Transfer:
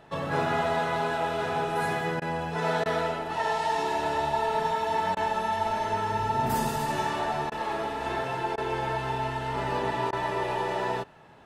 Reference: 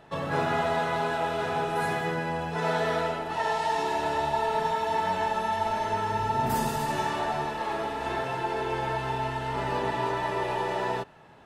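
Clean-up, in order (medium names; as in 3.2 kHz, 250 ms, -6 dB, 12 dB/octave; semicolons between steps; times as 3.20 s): interpolate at 2.20/2.84/5.15/7.50/8.56/10.11 s, 16 ms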